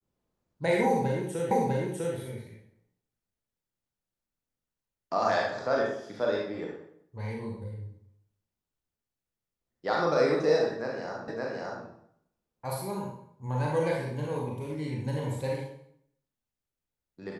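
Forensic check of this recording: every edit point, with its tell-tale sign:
1.51 s: repeat of the last 0.65 s
11.28 s: repeat of the last 0.57 s

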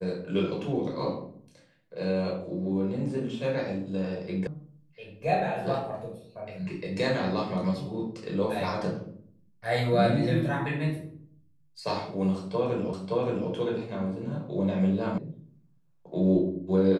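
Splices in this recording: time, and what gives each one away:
4.47 s: sound stops dead
12.93 s: repeat of the last 0.57 s
15.18 s: sound stops dead

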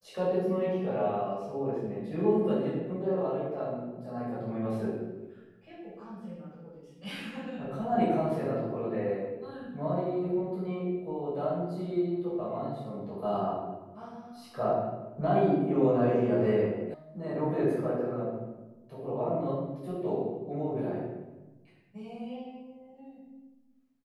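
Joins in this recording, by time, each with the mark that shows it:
16.94 s: sound stops dead

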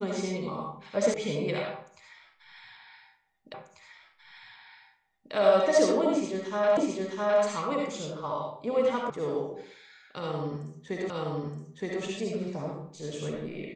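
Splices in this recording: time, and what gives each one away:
1.14 s: sound stops dead
3.54 s: repeat of the last 1.79 s
6.77 s: repeat of the last 0.66 s
9.10 s: sound stops dead
11.10 s: repeat of the last 0.92 s

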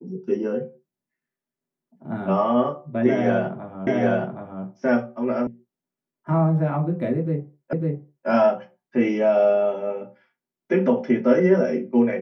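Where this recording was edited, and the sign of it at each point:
3.87 s: repeat of the last 0.77 s
5.47 s: sound stops dead
7.73 s: repeat of the last 0.55 s

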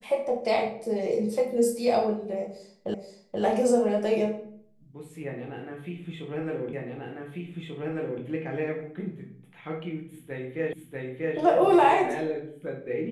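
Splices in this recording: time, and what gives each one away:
2.94 s: repeat of the last 0.48 s
6.73 s: repeat of the last 1.49 s
10.73 s: repeat of the last 0.64 s

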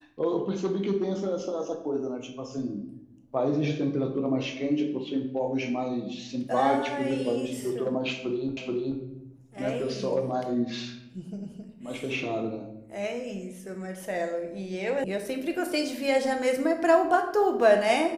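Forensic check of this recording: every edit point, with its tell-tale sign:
8.57 s: repeat of the last 0.43 s
15.04 s: sound stops dead

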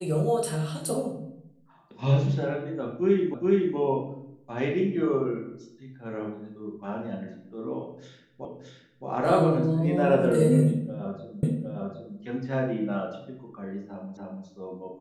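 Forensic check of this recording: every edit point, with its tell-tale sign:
3.34 s: repeat of the last 0.42 s
8.45 s: repeat of the last 0.62 s
11.43 s: repeat of the last 0.76 s
14.17 s: repeat of the last 0.29 s

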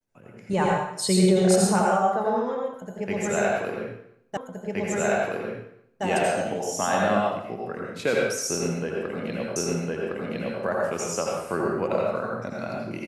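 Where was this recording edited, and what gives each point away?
4.37 s: repeat of the last 1.67 s
9.56 s: repeat of the last 1.06 s

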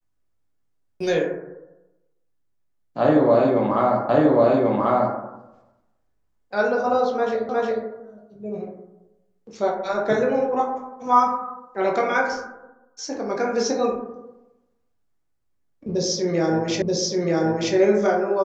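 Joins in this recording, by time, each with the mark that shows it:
4.09 s: repeat of the last 1.09 s
7.49 s: repeat of the last 0.36 s
16.82 s: repeat of the last 0.93 s

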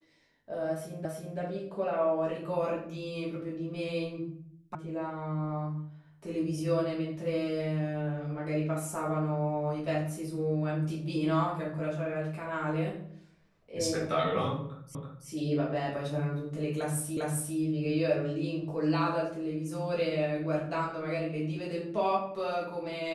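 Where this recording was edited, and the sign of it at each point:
1.05 s: repeat of the last 0.33 s
4.75 s: sound stops dead
14.95 s: repeat of the last 0.33 s
17.17 s: repeat of the last 0.4 s

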